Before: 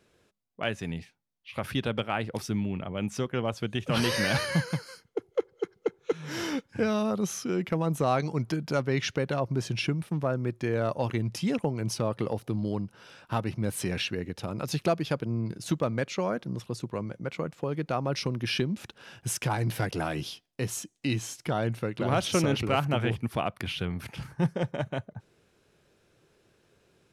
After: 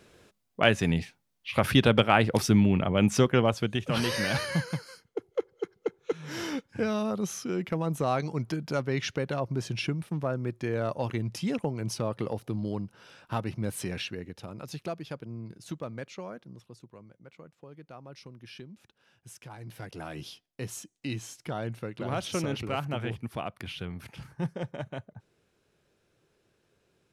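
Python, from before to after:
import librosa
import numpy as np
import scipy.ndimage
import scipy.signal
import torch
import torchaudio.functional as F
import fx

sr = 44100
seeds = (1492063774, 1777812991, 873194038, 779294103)

y = fx.gain(x, sr, db=fx.line((3.27, 8.5), (3.99, -2.0), (13.66, -2.0), (14.82, -9.5), (16.06, -9.5), (17.02, -17.5), (19.48, -17.5), (20.28, -5.5)))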